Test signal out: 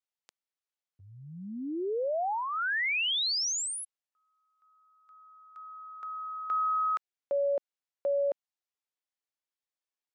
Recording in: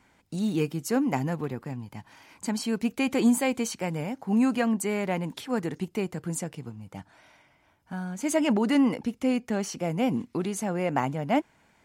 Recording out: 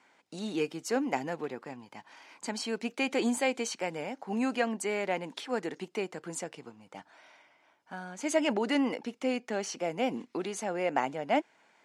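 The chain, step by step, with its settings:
dynamic equaliser 1,100 Hz, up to −5 dB, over −46 dBFS, Q 2.9
band-pass filter 380–7,000 Hz

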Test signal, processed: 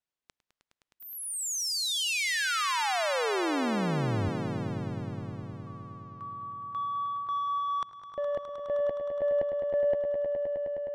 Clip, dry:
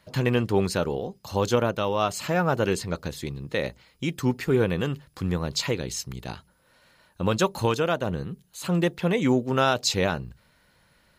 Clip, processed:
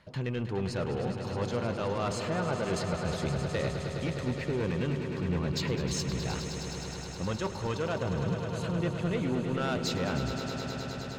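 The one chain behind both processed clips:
low-pass filter 7,900 Hz 12 dB per octave
bass and treble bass +2 dB, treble −6 dB
reversed playback
downward compressor 5 to 1, threshold −33 dBFS
reversed playback
soft clipping −30.5 dBFS
echo that builds up and dies away 104 ms, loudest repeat 5, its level −11 dB
level +5 dB

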